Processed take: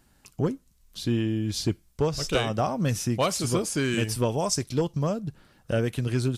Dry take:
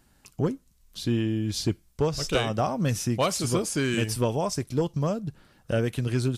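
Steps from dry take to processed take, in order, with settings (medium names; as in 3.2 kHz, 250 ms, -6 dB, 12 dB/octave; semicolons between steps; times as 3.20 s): 4.37–4.80 s: peaking EQ 12 kHz -> 2.9 kHz +8 dB 1.5 oct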